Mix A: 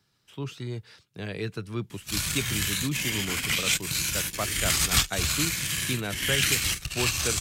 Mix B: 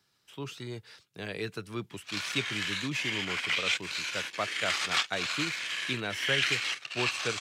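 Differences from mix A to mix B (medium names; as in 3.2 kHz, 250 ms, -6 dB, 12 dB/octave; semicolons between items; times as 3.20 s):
background: add band-pass 520–3400 Hz; master: add bass shelf 220 Hz -10.5 dB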